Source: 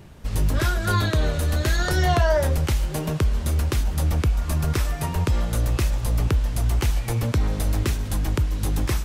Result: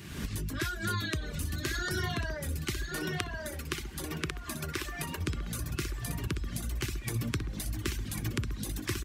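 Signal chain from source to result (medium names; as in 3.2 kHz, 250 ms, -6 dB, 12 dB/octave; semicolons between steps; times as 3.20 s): recorder AGC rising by 79 dB/s; delay 1096 ms -5 dB; reverb removal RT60 2 s; 2.90–5.21 s: tone controls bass -10 dB, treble -4 dB; compression 2:1, threshold -28 dBFS, peak gain reduction 7.5 dB; high-pass 120 Hz 6 dB/octave; high-order bell 670 Hz -11 dB 1.3 oct; band-stop 1.3 kHz, Q 10; echo from a far wall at 200 m, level -11 dB; tape noise reduction on one side only encoder only; trim -1.5 dB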